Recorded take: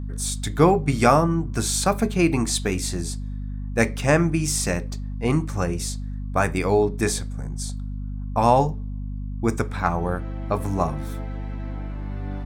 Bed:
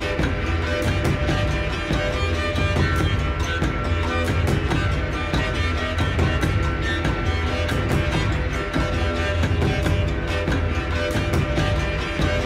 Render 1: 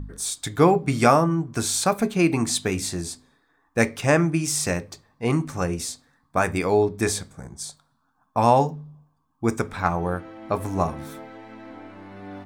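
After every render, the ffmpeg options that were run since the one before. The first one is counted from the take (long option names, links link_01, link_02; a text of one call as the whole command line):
ffmpeg -i in.wav -af "bandreject=frequency=50:width_type=h:width=4,bandreject=frequency=100:width_type=h:width=4,bandreject=frequency=150:width_type=h:width=4,bandreject=frequency=200:width_type=h:width=4,bandreject=frequency=250:width_type=h:width=4" out.wav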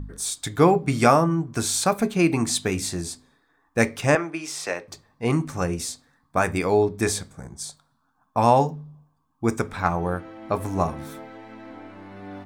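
ffmpeg -i in.wav -filter_complex "[0:a]asettb=1/sr,asplit=3[link_01][link_02][link_03];[link_01]atrim=end=4.154[link_04];[link_02]atrim=start=4.15:end=4.88,asetpts=PTS-STARTPTS,afade=type=in:duration=0.004:curve=qsin,afade=type=out:start_time=0.726:duration=0.004:curve=qsin,acrossover=split=350 4800:gain=0.0708 1 0.251[link_05][link_06][link_07];[link_05][link_06][link_07]amix=inputs=3:normalize=0[link_08];[link_03]atrim=start=4.876[link_09];[link_04][link_08]acrossfade=duration=0.004:curve1=hsin:curve2=qsin[link_10];[link_10][link_09]acrossfade=duration=0.004:curve1=qsin:curve2=hsin" out.wav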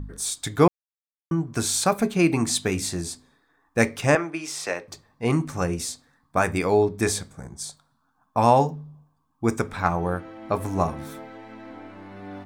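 ffmpeg -i in.wav -filter_complex "[0:a]asplit=3[link_01][link_02][link_03];[link_01]atrim=end=0.68,asetpts=PTS-STARTPTS,afade=type=out:start_time=0.676:duration=0.004:curve=hsin[link_04];[link_02]atrim=start=0.68:end=1.31,asetpts=PTS-STARTPTS,volume=0[link_05];[link_03]atrim=start=1.31,asetpts=PTS-STARTPTS,afade=type=in:duration=0.004:curve=hsin[link_06];[link_04][link_05][link_06]concat=n=3:v=0:a=1" out.wav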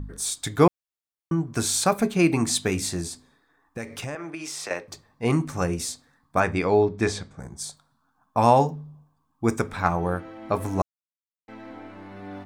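ffmpeg -i in.wav -filter_complex "[0:a]asettb=1/sr,asplit=3[link_01][link_02][link_03];[link_01]atrim=end=3.064[link_04];[link_02]atrim=start=3.06:end=4.71,asetpts=PTS-STARTPTS,afade=type=in:duration=0.004:curve=qsin,afade=type=out:start_time=1.646:duration=0.004:curve=qsin,acompressor=threshold=-30dB:ratio=6:attack=3.2:release=140:knee=1:detection=peak[link_05];[link_03]atrim=start=4.706[link_06];[link_04][link_05]acrossfade=duration=0.004:curve1=hsin:curve2=qsin[link_07];[link_07][link_06]acrossfade=duration=0.004:curve1=qsin:curve2=hsin,asettb=1/sr,asplit=3[link_08][link_09][link_10];[link_08]atrim=end=6.404[link_11];[link_09]atrim=start=6.4:end=7.4,asetpts=PTS-STARTPTS,afade=type=in:duration=0.004:curve=qsin,afade=type=out:start_time=0.996:duration=0.004:curve=qsin,lowpass=4800[link_12];[link_10]atrim=start=7.396[link_13];[link_11][link_12]acrossfade=duration=0.004:curve1=hsin:curve2=qsin[link_14];[link_14][link_13]acrossfade=duration=0.004:curve1=qsin:curve2=hsin,asplit=3[link_15][link_16][link_17];[link_15]atrim=end=10.82,asetpts=PTS-STARTPTS,afade=type=out:start_time=10.816:duration=0.004:curve=hsin[link_18];[link_16]atrim=start=10.82:end=11.48,asetpts=PTS-STARTPTS,volume=0[link_19];[link_17]atrim=start=11.48,asetpts=PTS-STARTPTS,afade=type=in:duration=0.004:curve=hsin[link_20];[link_18][link_19][link_20]concat=n=3:v=0:a=1" out.wav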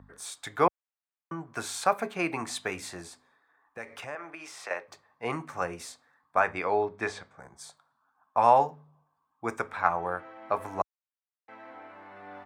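ffmpeg -i in.wav -filter_complex "[0:a]highpass=66,acrossover=split=540 2500:gain=0.141 1 0.224[link_01][link_02][link_03];[link_01][link_02][link_03]amix=inputs=3:normalize=0" out.wav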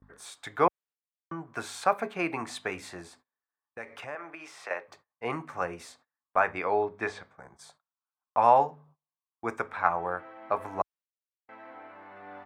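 ffmpeg -i in.wav -af "agate=range=-28dB:threshold=-55dB:ratio=16:detection=peak,bass=frequency=250:gain=-2,treble=frequency=4000:gain=-7" out.wav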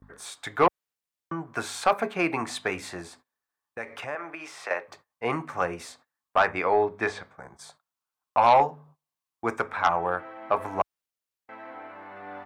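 ffmpeg -i in.wav -af "aeval=exprs='0.447*(cos(1*acos(clip(val(0)/0.447,-1,1)))-cos(1*PI/2))+0.0708*(cos(5*acos(clip(val(0)/0.447,-1,1)))-cos(5*PI/2))':channel_layout=same" out.wav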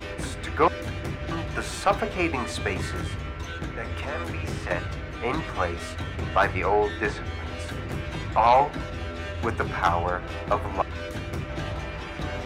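ffmpeg -i in.wav -i bed.wav -filter_complex "[1:a]volume=-11dB[link_01];[0:a][link_01]amix=inputs=2:normalize=0" out.wav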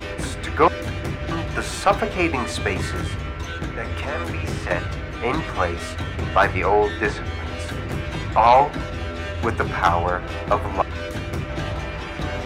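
ffmpeg -i in.wav -af "volume=4.5dB" out.wav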